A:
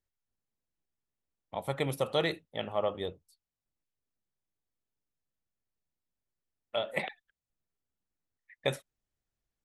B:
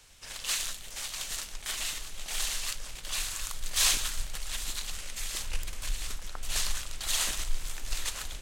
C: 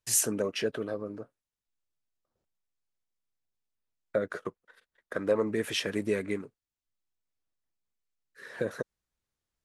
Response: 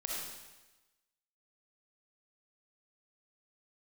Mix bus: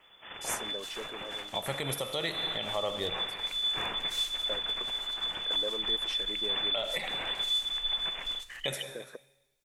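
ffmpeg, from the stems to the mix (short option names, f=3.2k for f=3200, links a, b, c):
-filter_complex "[0:a]highshelf=f=2.4k:g=11.5,volume=-1dB,asplit=4[a][b][c][d];[b]volume=-10dB[e];[c]volume=-23dB[f];[1:a]volume=1dB,asplit=2[g][h];[h]volume=-19dB[i];[2:a]highpass=290,volume=0dB,asplit=2[j][k];[k]volume=-10.5dB[l];[d]apad=whole_len=425501[m];[j][m]sidechaingate=range=-33dB:threshold=-57dB:ratio=16:detection=peak[n];[g][n]amix=inputs=2:normalize=0,lowpass=f=3k:t=q:w=0.5098,lowpass=f=3k:t=q:w=0.6013,lowpass=f=3k:t=q:w=0.9,lowpass=f=3k:t=q:w=2.563,afreqshift=-3500,alimiter=limit=-23.5dB:level=0:latency=1:release=254,volume=0dB[o];[3:a]atrim=start_sample=2205[p];[e][p]afir=irnorm=-1:irlink=0[q];[f][i][l]amix=inputs=3:normalize=0,aecho=0:1:343:1[r];[a][o][q][r]amix=inputs=4:normalize=0,alimiter=limit=-20.5dB:level=0:latency=1:release=164"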